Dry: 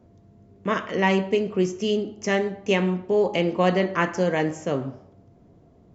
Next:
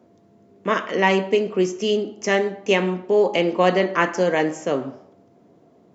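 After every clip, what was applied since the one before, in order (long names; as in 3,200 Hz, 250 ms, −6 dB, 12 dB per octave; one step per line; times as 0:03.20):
high-pass filter 240 Hz 12 dB per octave
level +4 dB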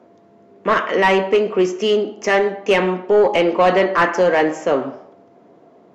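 mid-hump overdrive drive 17 dB, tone 1,600 Hz, clips at −3 dBFS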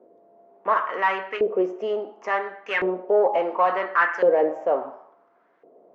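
auto-filter band-pass saw up 0.71 Hz 440–1,800 Hz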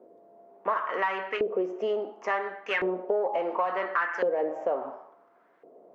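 downward compressor 6 to 1, threshold −24 dBFS, peak gain reduction 10 dB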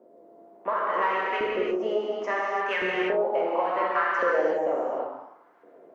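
reverb whose tail is shaped and stops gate 370 ms flat, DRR −4 dB
level −2 dB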